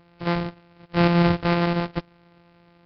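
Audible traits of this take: a buzz of ramps at a fixed pitch in blocks of 256 samples; Nellymoser

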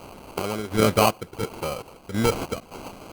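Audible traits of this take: a quantiser's noise floor 8-bit, dither triangular; chopped level 1.4 Hz, depth 60%, duty 55%; aliases and images of a low sample rate 1.8 kHz, jitter 0%; Opus

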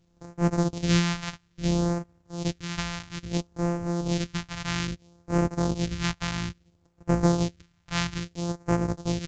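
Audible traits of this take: a buzz of ramps at a fixed pitch in blocks of 256 samples; phasing stages 2, 0.6 Hz, lowest notch 390–3400 Hz; µ-law

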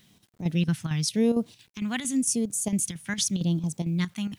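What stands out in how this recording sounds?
phasing stages 2, 0.89 Hz, lowest notch 490–1900 Hz; a quantiser's noise floor 10-bit, dither none; chopped level 4.4 Hz, depth 60%, duty 80%

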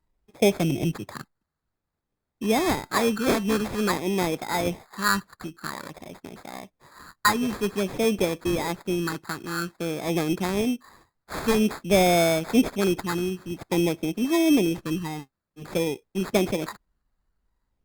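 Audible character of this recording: phasing stages 12, 0.51 Hz, lowest notch 580–2000 Hz; aliases and images of a low sample rate 2.9 kHz, jitter 0%; Opus

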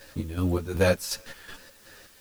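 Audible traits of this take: chopped level 2.7 Hz, depth 65%, duty 55%; a quantiser's noise floor 10-bit, dither triangular; a shimmering, thickened sound

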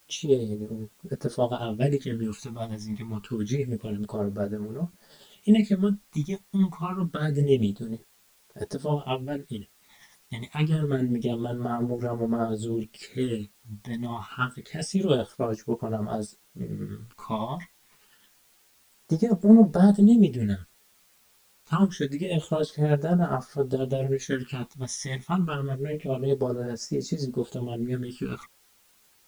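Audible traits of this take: tremolo triangle 10 Hz, depth 60%; phasing stages 12, 0.27 Hz, lowest notch 460–3200 Hz; a quantiser's noise floor 10-bit, dither triangular; a shimmering, thickened sound

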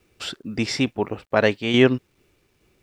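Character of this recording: tremolo saw down 2.3 Hz, depth 50%; a quantiser's noise floor 12-bit, dither none

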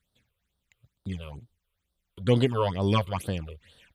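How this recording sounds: phasing stages 8, 2.2 Hz, lowest notch 220–2300 Hz

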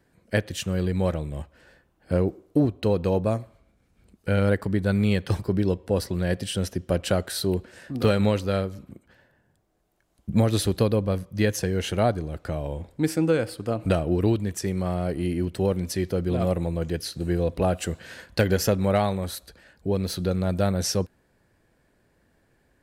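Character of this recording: noise floor -67 dBFS; spectral tilt -6.5 dB/octave

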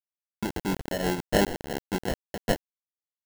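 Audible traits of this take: a quantiser's noise floor 6-bit, dither none; tremolo triangle 5.8 Hz, depth 60%; aliases and images of a low sample rate 1.2 kHz, jitter 0%

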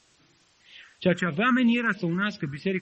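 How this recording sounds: phasing stages 4, 3.1 Hz, lowest notch 620–1400 Hz; a quantiser's noise floor 10-bit, dither triangular; MP3

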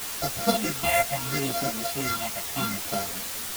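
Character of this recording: a buzz of ramps at a fixed pitch in blocks of 64 samples; phasing stages 6, 0.73 Hz, lowest notch 310–3000 Hz; a quantiser's noise floor 6-bit, dither triangular; a shimmering, thickened sound

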